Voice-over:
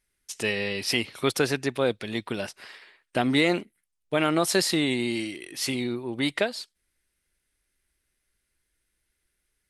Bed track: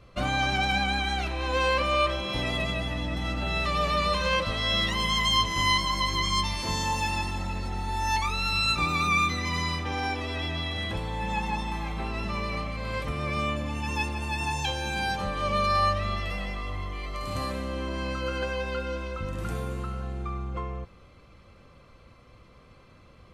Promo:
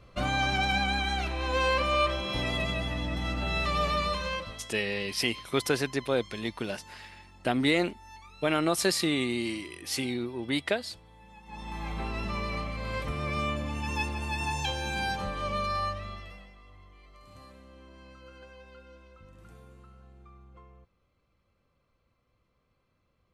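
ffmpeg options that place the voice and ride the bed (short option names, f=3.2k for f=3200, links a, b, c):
-filter_complex "[0:a]adelay=4300,volume=-3dB[a];[1:a]volume=19.5dB,afade=t=out:st=3.84:d=0.86:silence=0.0841395,afade=t=in:st=11.45:d=0.48:silence=0.0891251,afade=t=out:st=15.03:d=1.48:silence=0.125893[b];[a][b]amix=inputs=2:normalize=0"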